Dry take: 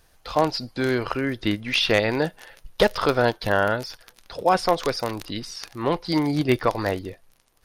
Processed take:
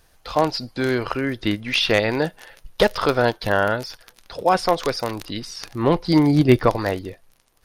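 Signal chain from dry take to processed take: 5.58–6.77 s: bass shelf 430 Hz +7.5 dB; trim +1.5 dB

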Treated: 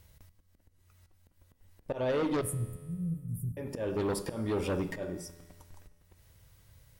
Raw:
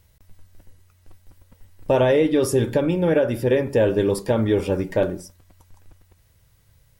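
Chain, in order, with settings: slow attack 363 ms; in parallel at -0.5 dB: compression 10:1, threshold -29 dBFS, peak gain reduction 15 dB; 2.41–3.57 s: on the sum: Chebyshev band-stop 170–8700 Hz, order 4; Chebyshev shaper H 4 -18 dB, 5 -9 dB, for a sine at -7.5 dBFS; feedback comb 85 Hz, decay 1.8 s, harmonics all, mix 60%; on a send at -17 dB: reverberation RT60 0.85 s, pre-delay 3 ms; on the sum: trim -8.5 dB

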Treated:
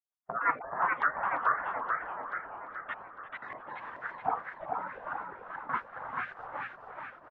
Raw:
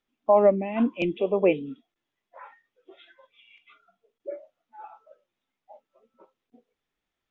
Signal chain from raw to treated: pitch shift switched off and on -10 st, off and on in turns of 205 ms; recorder AGC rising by 11 dB/s; spectral gate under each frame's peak -30 dB weak; high-pass 110 Hz 12 dB/octave; gate with hold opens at -51 dBFS; peaking EQ 1.5 kHz +15 dB 1.8 oct; reverse; compression 10:1, threshold -36 dBFS, peak gain reduction 10 dB; reverse; LFO low-pass saw up 1.7 Hz 650–1700 Hz; on a send: frequency-shifting echo 346 ms, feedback 53%, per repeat -120 Hz, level -13 dB; on the sum: modulated delay 431 ms, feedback 56%, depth 170 cents, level -4 dB; trim +8 dB

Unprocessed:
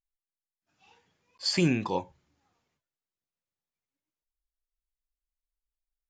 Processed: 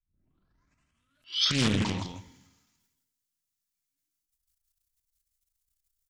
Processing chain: tape start-up on the opening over 2.02 s; high-order bell 560 Hz -11 dB; comb 3 ms, depth 35%; two-slope reverb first 0.2 s, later 1.5 s, from -19 dB, DRR 14.5 dB; transient shaper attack -9 dB, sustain +11 dB; tone controls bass +3 dB, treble +13 dB; delay 165 ms -6.5 dB; loudspeaker Doppler distortion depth 0.74 ms; trim -3 dB

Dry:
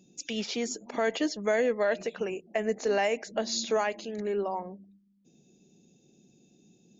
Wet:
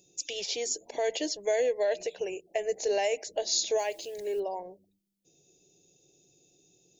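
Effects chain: treble shelf 4.3 kHz +8 dB; 3.78–4.40 s: word length cut 10-bit, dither triangular; static phaser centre 530 Hz, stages 4

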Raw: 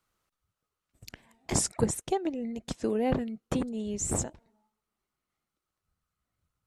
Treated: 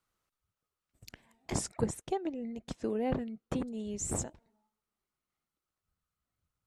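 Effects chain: 1.50–3.67 s: treble shelf 4.7 kHz -6.5 dB; trim -4.5 dB

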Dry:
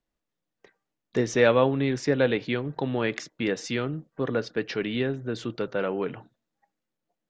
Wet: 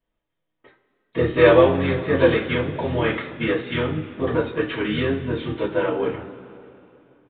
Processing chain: resampled via 8 kHz; harmony voices -7 st -5 dB; two-slope reverb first 0.28 s, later 2.9 s, from -21 dB, DRR -9 dB; trim -4.5 dB

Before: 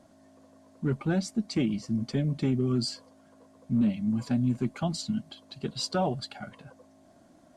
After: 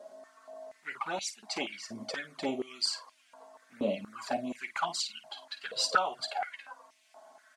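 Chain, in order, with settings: early reflections 11 ms -8 dB, 52 ms -12 dB; touch-sensitive flanger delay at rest 5 ms, full sweep at -22 dBFS; step-sequenced high-pass 4.2 Hz 530–2500 Hz; trim +4.5 dB

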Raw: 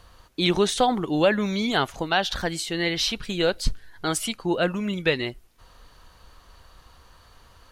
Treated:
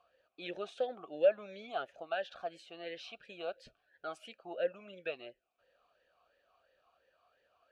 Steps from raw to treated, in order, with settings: talking filter a-e 2.9 Hz; trim -5 dB

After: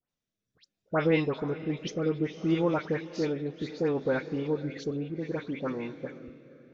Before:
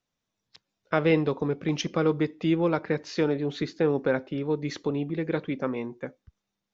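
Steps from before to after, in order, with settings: echo that smears into a reverb 494 ms, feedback 41%, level -14 dB; rotary cabinet horn 0.65 Hz; phase dispersion highs, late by 100 ms, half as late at 2.2 kHz; trim -2 dB

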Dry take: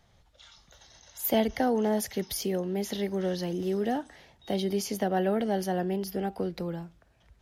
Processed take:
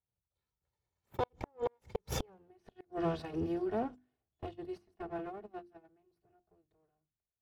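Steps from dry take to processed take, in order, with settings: comb filter that takes the minimum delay 2.5 ms; Doppler pass-by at 2.38 s, 35 m/s, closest 3.3 m; high-pass 120 Hz 12 dB/octave; tilt EQ -4.5 dB/octave; gate -56 dBFS, range -22 dB; peaking EQ 280 Hz -8 dB 0.42 oct; hum notches 50/100/150/200/250/300/350 Hz; inverted gate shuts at -38 dBFS, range -41 dB; trim +16.5 dB

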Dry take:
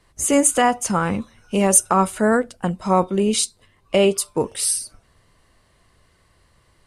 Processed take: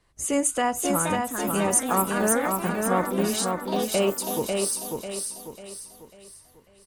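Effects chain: ever faster or slower copies 596 ms, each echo +4 st, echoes 3, each echo -6 dB; feedback delay 545 ms, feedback 40%, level -4 dB; trim -7.5 dB

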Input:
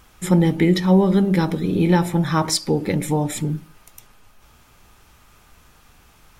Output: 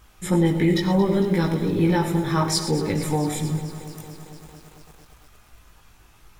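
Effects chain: gated-style reverb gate 140 ms rising, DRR 9 dB; chorus voices 6, 0.55 Hz, delay 19 ms, depth 1.9 ms; bit-crushed delay 226 ms, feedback 80%, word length 7-bit, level -14.5 dB

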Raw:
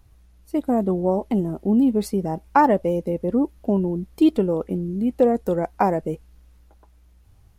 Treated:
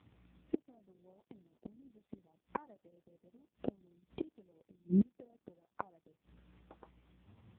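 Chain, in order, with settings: inverted gate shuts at -20 dBFS, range -41 dB; trim +2 dB; AMR-NB 4.75 kbps 8 kHz

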